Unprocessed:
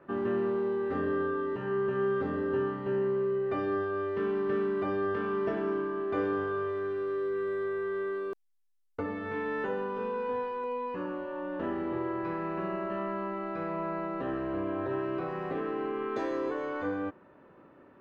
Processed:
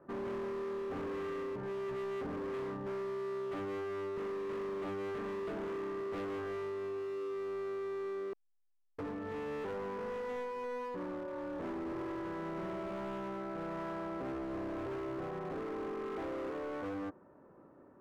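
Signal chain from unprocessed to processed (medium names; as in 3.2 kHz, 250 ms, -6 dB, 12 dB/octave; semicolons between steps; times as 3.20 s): low-pass 1.2 kHz 12 dB/octave; overload inside the chain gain 34.5 dB; trim -2.5 dB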